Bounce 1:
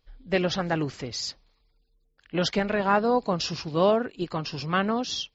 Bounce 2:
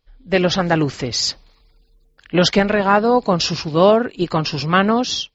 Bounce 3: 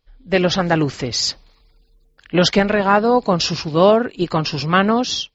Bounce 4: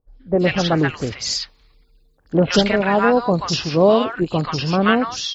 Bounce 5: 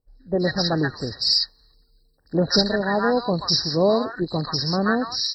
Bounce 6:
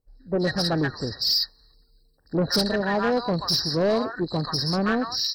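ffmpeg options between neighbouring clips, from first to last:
-af "dynaudnorm=f=120:g=5:m=13dB"
-af anull
-filter_complex "[0:a]acrossover=split=970|4700[a][b][c];[c]adelay=80[d];[b]adelay=130[e];[a][e][d]amix=inputs=3:normalize=0"
-af "highshelf=f=1.9k:t=q:w=1.5:g=8.5,afftfilt=real='re*eq(mod(floor(b*sr/1024/1900),2),0)':imag='im*eq(mod(floor(b*sr/1024/1900),2),0)':win_size=1024:overlap=0.75,volume=-4.5dB"
-af "asoftclip=type=tanh:threshold=-16.5dB"

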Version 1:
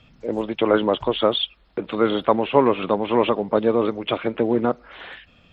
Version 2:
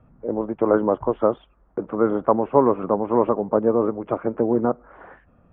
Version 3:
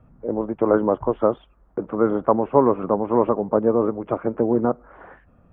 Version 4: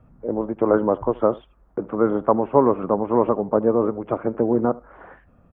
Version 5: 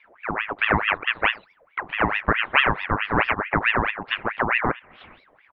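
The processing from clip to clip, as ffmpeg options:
-af "lowpass=f=1.3k:w=0.5412,lowpass=f=1.3k:w=1.3066"
-af "lowshelf=f=140:g=3"
-af "aecho=1:1:77:0.0794"
-af "aeval=exprs='val(0)*sin(2*PI*1400*n/s+1400*0.65/4.6*sin(2*PI*4.6*n/s))':c=same"

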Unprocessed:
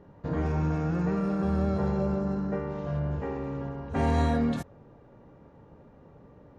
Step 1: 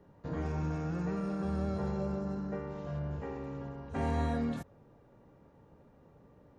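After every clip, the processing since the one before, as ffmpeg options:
-filter_complex "[0:a]highshelf=f=4.9k:g=8.5,acrossover=split=160|2800[a][b][c];[c]alimiter=level_in=19.5dB:limit=-24dB:level=0:latency=1,volume=-19.5dB[d];[a][b][d]amix=inputs=3:normalize=0,volume=-7dB"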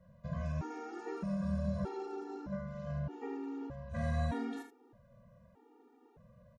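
-filter_complex "[0:a]asplit=2[a][b];[b]aecho=0:1:44|76:0.335|0.335[c];[a][c]amix=inputs=2:normalize=0,afftfilt=real='re*gt(sin(2*PI*0.81*pts/sr)*(1-2*mod(floor(b*sr/1024/240),2)),0)':imag='im*gt(sin(2*PI*0.81*pts/sr)*(1-2*mod(floor(b*sr/1024/240),2)),0)':win_size=1024:overlap=0.75"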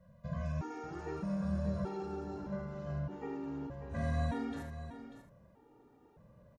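-af "aecho=1:1:591:0.266"

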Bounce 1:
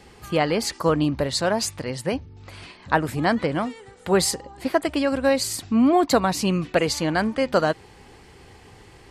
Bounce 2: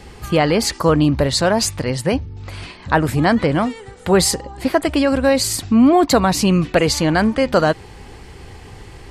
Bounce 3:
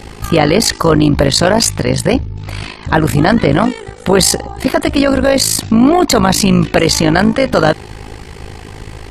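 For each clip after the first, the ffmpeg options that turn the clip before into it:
-filter_complex "[0:a]lowshelf=f=88:g=10,asplit=2[a][b];[b]alimiter=limit=-16dB:level=0:latency=1:release=19,volume=-1dB[c];[a][c]amix=inputs=2:normalize=0,volume=1.5dB"
-af "tremolo=f=53:d=0.857,apsyclip=14.5dB,volume=-3dB"

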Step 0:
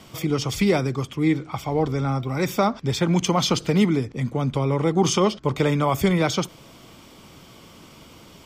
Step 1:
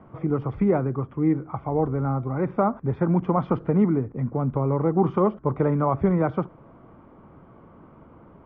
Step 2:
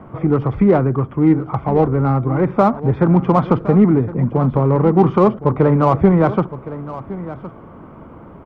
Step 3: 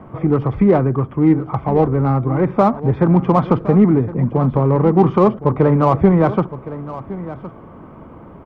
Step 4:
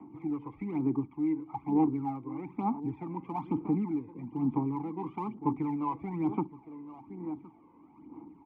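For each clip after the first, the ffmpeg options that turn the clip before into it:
-af "lowpass=f=1.4k:w=0.5412,lowpass=f=1.4k:w=1.3066,volume=-1dB"
-filter_complex "[0:a]asplit=2[a][b];[b]asoftclip=type=tanh:threshold=-27.5dB,volume=-6dB[c];[a][c]amix=inputs=2:normalize=0,aecho=1:1:1064:0.178,volume=7dB"
-af "bandreject=f=1.4k:w=18"
-filter_complex "[0:a]acrossover=split=250|630[a][b][c];[b]alimiter=limit=-16.5dB:level=0:latency=1:release=286[d];[a][d][c]amix=inputs=3:normalize=0,asplit=3[e][f][g];[e]bandpass=f=300:t=q:w=8,volume=0dB[h];[f]bandpass=f=870:t=q:w=8,volume=-6dB[i];[g]bandpass=f=2.24k:t=q:w=8,volume=-9dB[j];[h][i][j]amix=inputs=3:normalize=0,aphaser=in_gain=1:out_gain=1:delay=2:decay=0.61:speed=1.1:type=sinusoidal,volume=-6.5dB"

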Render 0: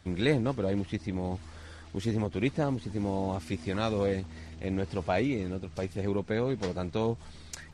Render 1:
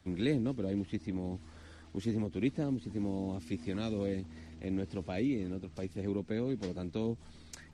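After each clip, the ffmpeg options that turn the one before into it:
-filter_complex "[0:a]acrossover=split=240|580|1800[a][b][c][d];[c]acompressor=threshold=-47dB:ratio=6[e];[a][b][e][d]amix=inputs=4:normalize=0,equalizer=f=260:w=1.5:g=6.5,volume=-7dB"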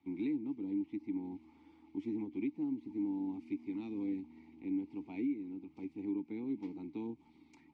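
-filter_complex "[0:a]asplit=3[a][b][c];[a]bandpass=f=300:t=q:w=8,volume=0dB[d];[b]bandpass=f=870:t=q:w=8,volume=-6dB[e];[c]bandpass=f=2.24k:t=q:w=8,volume=-9dB[f];[d][e][f]amix=inputs=3:normalize=0,alimiter=level_in=10dB:limit=-24dB:level=0:latency=1:release=447,volume=-10dB,volume=5.5dB"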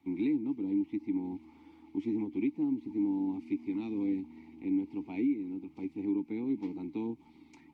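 -af "volume=5.5dB" -ar 44100 -c:a libvorbis -b:a 96k

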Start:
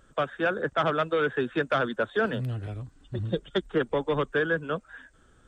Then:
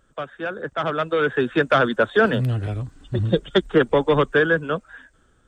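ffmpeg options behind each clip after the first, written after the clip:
-af "dynaudnorm=f=260:g=9:m=16.5dB,volume=-3dB"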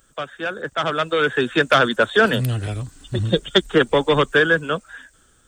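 -af "crystalizer=i=4.5:c=0"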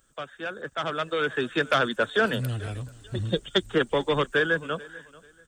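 -af "aecho=1:1:439|878:0.0891|0.0241,volume=-7.5dB"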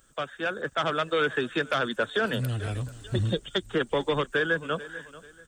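-af "alimiter=limit=-19.5dB:level=0:latency=1:release=456,volume=4dB"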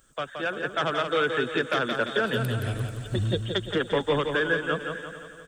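-af "aecho=1:1:172|344|516|688|860|1032:0.501|0.246|0.12|0.059|0.0289|0.0142"

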